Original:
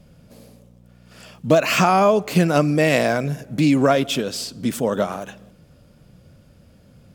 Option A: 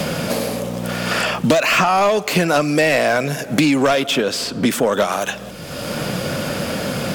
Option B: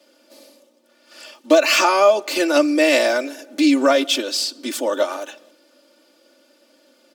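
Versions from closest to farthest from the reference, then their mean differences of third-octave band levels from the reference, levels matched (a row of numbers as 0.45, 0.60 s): B, A; 6.5, 13.5 dB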